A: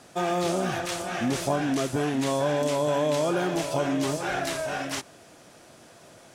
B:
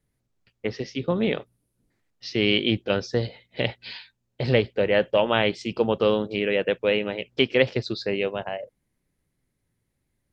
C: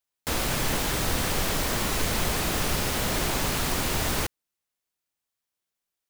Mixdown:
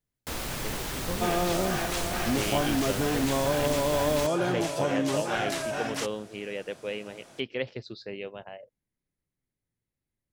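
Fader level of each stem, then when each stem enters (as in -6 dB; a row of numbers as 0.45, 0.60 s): -1.5, -12.0, -7.0 dB; 1.05, 0.00, 0.00 s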